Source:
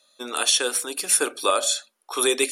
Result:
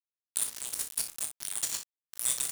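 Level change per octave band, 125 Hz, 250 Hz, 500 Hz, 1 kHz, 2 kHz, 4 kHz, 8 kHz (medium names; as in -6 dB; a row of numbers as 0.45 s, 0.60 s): no reading, -25.0 dB, -32.0 dB, -24.0 dB, -19.0 dB, -16.5 dB, -8.0 dB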